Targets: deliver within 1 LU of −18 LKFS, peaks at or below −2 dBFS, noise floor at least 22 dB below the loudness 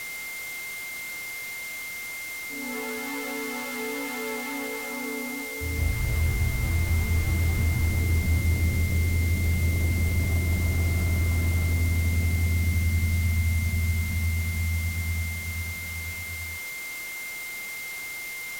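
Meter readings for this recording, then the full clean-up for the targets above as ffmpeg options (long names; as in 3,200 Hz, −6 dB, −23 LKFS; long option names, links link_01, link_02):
interfering tone 2,100 Hz; level of the tone −34 dBFS; background noise floor −36 dBFS; target noise floor −50 dBFS; integrated loudness −27.5 LKFS; sample peak −14.0 dBFS; target loudness −18.0 LKFS
→ -af "bandreject=frequency=2100:width=30"
-af "afftdn=noise_reduction=14:noise_floor=-36"
-af "volume=9.5dB"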